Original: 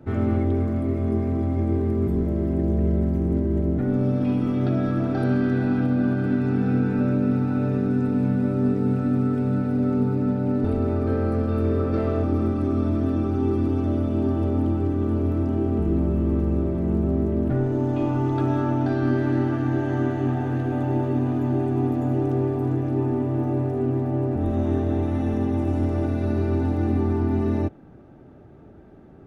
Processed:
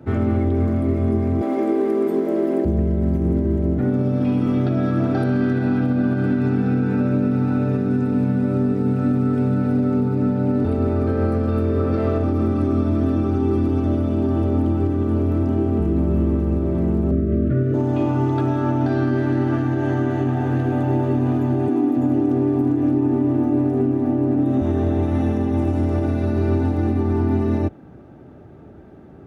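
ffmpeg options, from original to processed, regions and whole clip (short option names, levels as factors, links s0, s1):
-filter_complex "[0:a]asettb=1/sr,asplit=3[s0][s1][s2];[s0]atrim=end=1.414[s3];[s1]atrim=start=1.41:end=2.65,asetpts=PTS-STARTPTS,afade=t=in:d=0.004:c=qsin,afade=t=out:st=1.236:d=0.004:c=qsin,highpass=f=300:w=0.5412,highpass=f=300:w=1.3066,acontrast=39[s4];[s2]atrim=start=2.646[s5];[s3][s4]acrossfade=d=0.004:c1=hsin:c2=qsin[s6];[s6][s5]acrossfade=d=0.004:c1=qsin:c2=hsin,asettb=1/sr,asplit=3[s7][s8][s9];[s7]atrim=end=17.114[s10];[s8]atrim=start=17.11:end=17.74,asetpts=PTS-STARTPTS,afade=t=in:d=0.004:c=qsin,afade=t=out:st=0.626:d=0.004:c=qsin,asuperstop=centerf=870:order=12:qfactor=1.7,bass=f=250:g=3,treble=f=4000:g=-10[s11];[s9]atrim=start=17.736[s12];[s10][s11]acrossfade=d=0.004:c1=hsin:c2=qsin[s13];[s13][s12]acrossfade=d=0.004:c1=qsin:c2=hsin,asettb=1/sr,asplit=3[s14][s15][s16];[s14]atrim=end=21.684[s17];[s15]atrim=start=21.68:end=24.61,asetpts=PTS-STARTPTS,afade=t=in:d=0.004:c=qsin,afade=t=out:st=2.926:d=0.004:c=qsin,equalizer=f=280:w=5.1:g=14,acrossover=split=200[s18][s19];[s18]adelay=280[s20];[s20][s19]amix=inputs=2:normalize=0,atrim=end_sample=129213[s21];[s16]atrim=start=24.606[s22];[s17][s21]acrossfade=d=0.004:c1=hsin:c2=qsin[s23];[s23][s22]acrossfade=d=0.004:c1=qsin:c2=hsin,highpass=f=46:w=0.5412,highpass=f=46:w=1.3066,alimiter=limit=0.168:level=0:latency=1:release=105,volume=1.68"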